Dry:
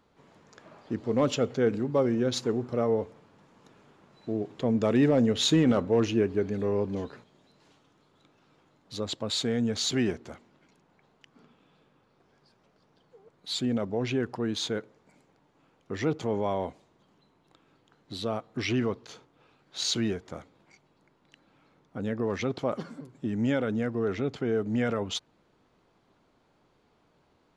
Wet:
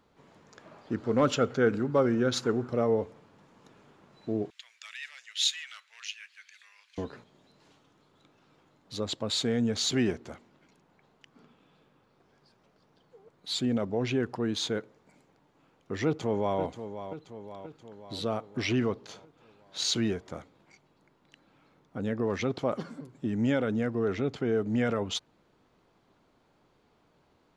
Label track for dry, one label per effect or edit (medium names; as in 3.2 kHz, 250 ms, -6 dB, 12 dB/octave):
0.920000	2.700000	peaking EQ 1.4 kHz +10 dB 0.42 oct
4.500000	6.980000	inverse Chebyshev high-pass stop band from 330 Hz, stop band 80 dB
16.050000	16.600000	echo throw 530 ms, feedback 60%, level -10.5 dB